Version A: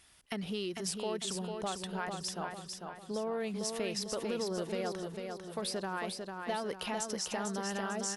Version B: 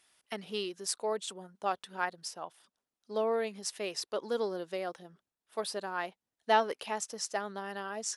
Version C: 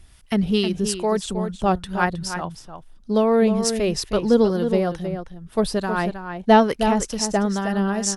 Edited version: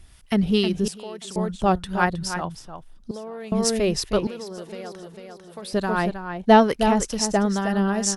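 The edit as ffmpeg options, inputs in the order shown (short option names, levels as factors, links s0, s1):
-filter_complex "[0:a]asplit=3[s0][s1][s2];[2:a]asplit=4[s3][s4][s5][s6];[s3]atrim=end=0.882[s7];[s0]atrim=start=0.878:end=1.362[s8];[s4]atrim=start=1.358:end=3.112[s9];[s1]atrim=start=3.108:end=3.522[s10];[s5]atrim=start=3.518:end=4.272[s11];[s2]atrim=start=4.268:end=5.732[s12];[s6]atrim=start=5.728[s13];[s7][s8]acrossfade=d=0.004:c1=hsin:c2=hsin[s14];[s14][s9]acrossfade=d=0.004:c1=hsin:c2=hsin[s15];[s15][s10]acrossfade=d=0.004:c1=hsin:c2=hsin[s16];[s16][s11]acrossfade=d=0.004:c1=hsin:c2=hsin[s17];[s17][s12]acrossfade=d=0.004:c1=hsin:c2=hsin[s18];[s18][s13]acrossfade=d=0.004:c1=hsin:c2=hsin"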